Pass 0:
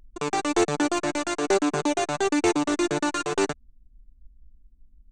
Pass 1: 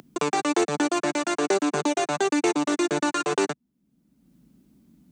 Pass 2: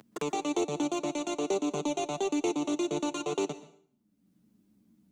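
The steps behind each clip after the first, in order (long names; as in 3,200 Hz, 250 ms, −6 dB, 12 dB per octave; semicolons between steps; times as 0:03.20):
high-pass filter 140 Hz 24 dB per octave; multiband upward and downward compressor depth 70%
in parallel at −9.5 dB: gain into a clipping stage and back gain 21 dB; on the sum: flanger swept by the level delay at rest 11 ms, full sweep at −22 dBFS; dense smooth reverb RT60 0.54 s, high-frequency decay 0.9×, pre-delay 110 ms, DRR 15.5 dB; level −7.5 dB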